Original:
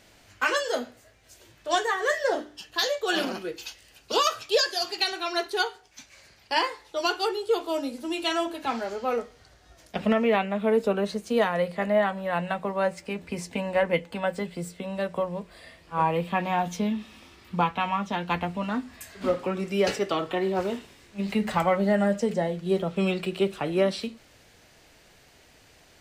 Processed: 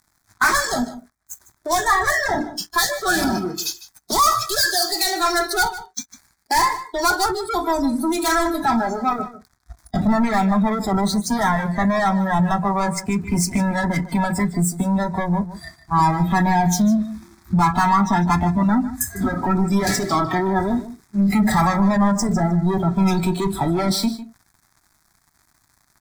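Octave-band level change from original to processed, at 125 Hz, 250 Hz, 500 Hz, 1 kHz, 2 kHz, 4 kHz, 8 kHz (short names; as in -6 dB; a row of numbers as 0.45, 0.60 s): +13.0, +10.5, 0.0, +9.0, +7.5, +4.5, +14.5 dB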